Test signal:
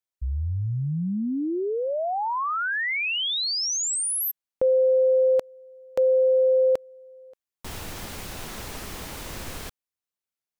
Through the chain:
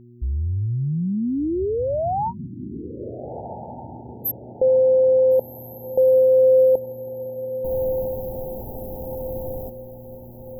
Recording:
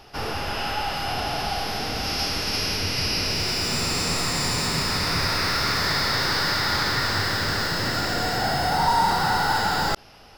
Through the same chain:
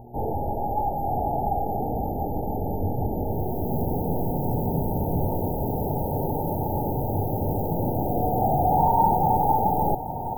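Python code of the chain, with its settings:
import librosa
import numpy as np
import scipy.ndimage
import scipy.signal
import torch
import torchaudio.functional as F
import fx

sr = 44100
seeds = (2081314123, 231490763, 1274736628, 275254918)

y = fx.brickwall_bandstop(x, sr, low_hz=930.0, high_hz=12000.0)
y = fx.dmg_buzz(y, sr, base_hz=120.0, harmonics=3, level_db=-50.0, tilt_db=-3, odd_only=False)
y = fx.echo_diffused(y, sr, ms=1429, feedback_pct=44, wet_db=-11)
y = y * 10.0 ** (3.5 / 20.0)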